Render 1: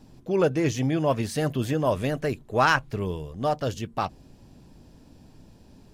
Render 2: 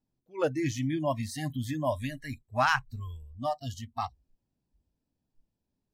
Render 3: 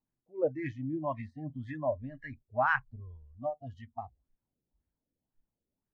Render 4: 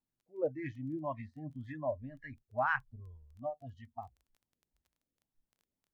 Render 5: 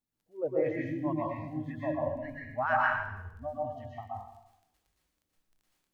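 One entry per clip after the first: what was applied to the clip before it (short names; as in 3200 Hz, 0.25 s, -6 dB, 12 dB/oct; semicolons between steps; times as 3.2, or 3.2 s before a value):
spectral noise reduction 27 dB; gain -4.5 dB
LFO low-pass sine 1.9 Hz 460–1900 Hz; gain -7.5 dB
crackle 14/s -50 dBFS; gain -4 dB
plate-style reverb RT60 0.82 s, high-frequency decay 0.95×, pre-delay 0.105 s, DRR -5 dB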